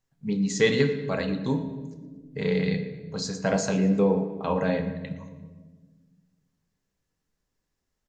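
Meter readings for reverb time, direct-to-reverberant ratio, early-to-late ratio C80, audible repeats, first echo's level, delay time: 1.4 s, 6.5 dB, 11.0 dB, 2, -17.0 dB, 0.116 s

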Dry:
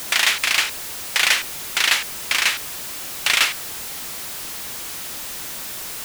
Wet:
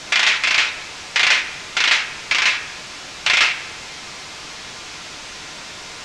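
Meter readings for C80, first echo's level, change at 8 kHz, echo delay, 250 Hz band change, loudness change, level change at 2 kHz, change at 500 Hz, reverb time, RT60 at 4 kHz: 13.5 dB, none, -4.0 dB, none, +1.0 dB, +4.5 dB, +3.5 dB, +1.5 dB, 1.0 s, 1.0 s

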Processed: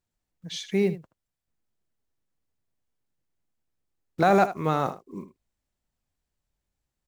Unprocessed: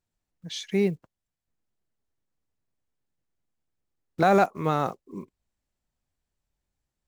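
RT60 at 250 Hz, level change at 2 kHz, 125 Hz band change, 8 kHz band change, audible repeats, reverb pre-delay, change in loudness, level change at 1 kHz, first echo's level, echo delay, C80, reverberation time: none, 0.0 dB, 0.0 dB, 0.0 dB, 1, none, 0.0 dB, +0.5 dB, -13.5 dB, 77 ms, none, none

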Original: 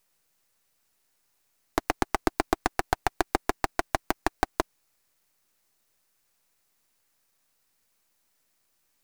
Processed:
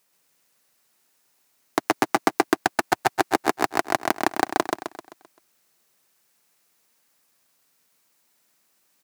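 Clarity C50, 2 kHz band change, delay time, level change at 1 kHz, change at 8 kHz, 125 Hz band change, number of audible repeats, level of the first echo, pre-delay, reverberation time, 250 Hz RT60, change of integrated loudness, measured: none, +6.0 dB, 0.13 s, +5.5 dB, +6.0 dB, -1.5 dB, 5, -3.5 dB, none, none, none, +5.5 dB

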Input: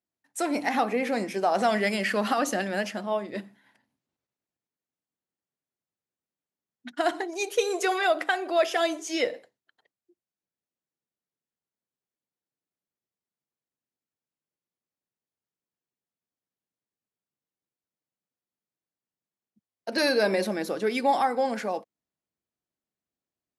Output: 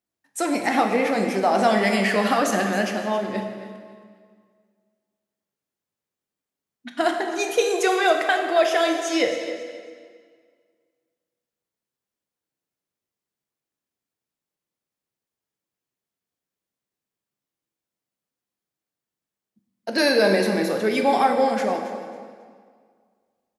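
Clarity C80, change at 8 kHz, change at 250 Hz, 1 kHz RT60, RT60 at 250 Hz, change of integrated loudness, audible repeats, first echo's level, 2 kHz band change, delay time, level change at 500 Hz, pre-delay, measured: 6.0 dB, +5.0 dB, +6.5 dB, 1.9 s, 1.9 s, +5.0 dB, 2, -13.5 dB, +5.0 dB, 0.272 s, +5.5 dB, 12 ms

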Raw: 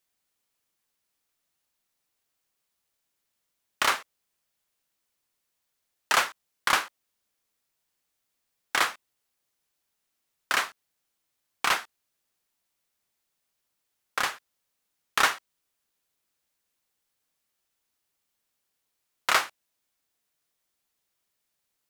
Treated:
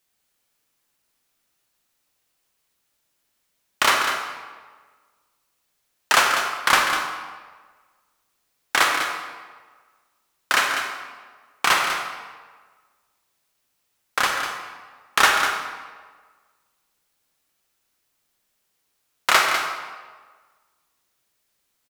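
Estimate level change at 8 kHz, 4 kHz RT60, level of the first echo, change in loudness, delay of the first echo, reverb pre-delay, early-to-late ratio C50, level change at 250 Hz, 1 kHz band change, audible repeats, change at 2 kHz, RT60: +7.0 dB, 1.0 s, -9.0 dB, +6.0 dB, 0.198 s, 34 ms, 2.0 dB, +8.5 dB, +8.0 dB, 1, +8.0 dB, 1.5 s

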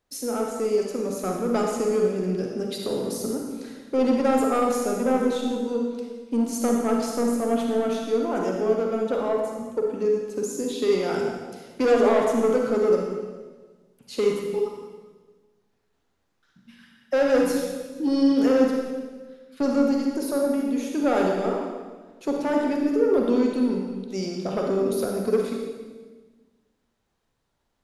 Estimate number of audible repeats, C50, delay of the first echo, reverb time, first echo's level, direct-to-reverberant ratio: none, 1.0 dB, none, 1.4 s, none, 0.0 dB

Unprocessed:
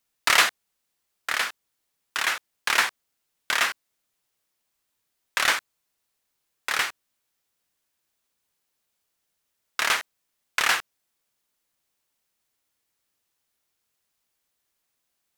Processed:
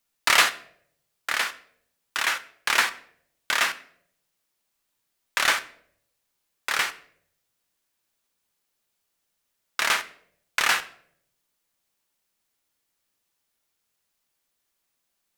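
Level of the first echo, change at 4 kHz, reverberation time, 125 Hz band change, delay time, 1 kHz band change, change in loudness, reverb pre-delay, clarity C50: none, +0.5 dB, 0.65 s, n/a, none, +0.5 dB, +0.5 dB, 3 ms, 16.5 dB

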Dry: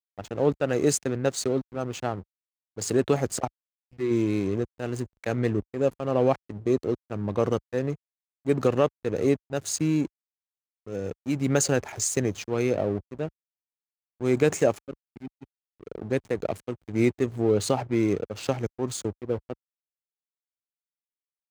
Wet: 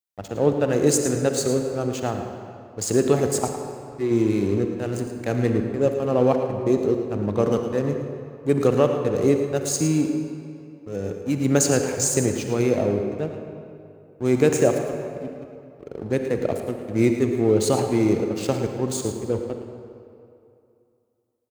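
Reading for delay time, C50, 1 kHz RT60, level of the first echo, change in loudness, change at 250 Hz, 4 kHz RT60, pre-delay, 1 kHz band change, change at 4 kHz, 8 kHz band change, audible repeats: 0.11 s, 4.5 dB, 2.6 s, -11.5 dB, +4.5 dB, +5.0 dB, 1.6 s, 38 ms, +3.5 dB, +3.0 dB, +5.0 dB, 1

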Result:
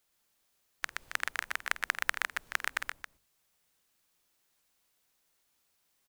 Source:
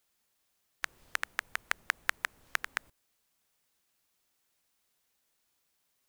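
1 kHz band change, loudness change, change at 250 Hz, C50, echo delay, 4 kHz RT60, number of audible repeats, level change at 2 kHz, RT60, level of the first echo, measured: +2.0 dB, +1.5 dB, +2.0 dB, none, 49 ms, none, 3, +2.0 dB, none, -16.5 dB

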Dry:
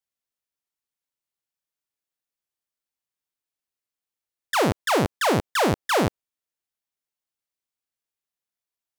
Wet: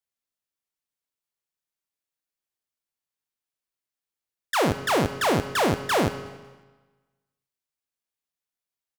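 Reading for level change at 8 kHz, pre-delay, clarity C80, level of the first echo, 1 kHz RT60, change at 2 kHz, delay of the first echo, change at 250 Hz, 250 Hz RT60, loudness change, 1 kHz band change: -1.0 dB, 7 ms, 12.0 dB, -23.0 dB, 1.3 s, -1.0 dB, 0.184 s, -1.0 dB, 1.3 s, -1.0 dB, -1.0 dB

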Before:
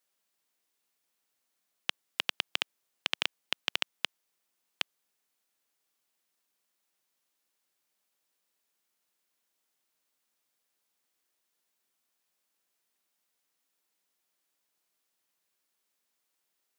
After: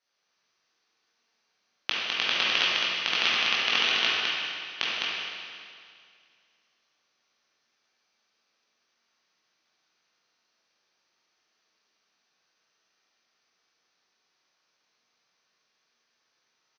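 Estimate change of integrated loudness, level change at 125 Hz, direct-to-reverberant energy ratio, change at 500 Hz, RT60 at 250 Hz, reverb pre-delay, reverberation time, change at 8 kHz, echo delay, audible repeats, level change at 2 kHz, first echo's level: +9.5 dB, n/a, -9.5 dB, +9.5 dB, 2.2 s, 16 ms, 2.2 s, +7.0 dB, 0.207 s, 1, +11.5 dB, -3.5 dB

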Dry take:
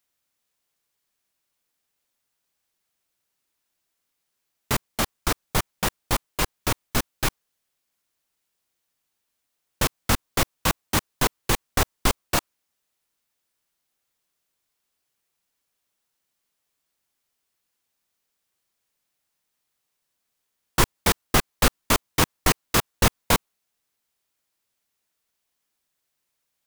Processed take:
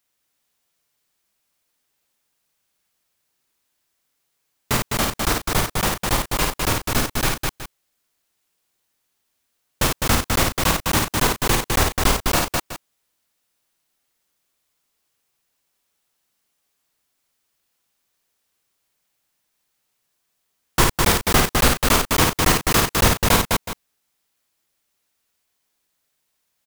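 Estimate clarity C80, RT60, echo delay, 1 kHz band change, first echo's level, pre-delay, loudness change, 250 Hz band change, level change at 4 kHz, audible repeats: none, none, 55 ms, +5.5 dB, -4.0 dB, none, +5.0 dB, +5.0 dB, +5.5 dB, 3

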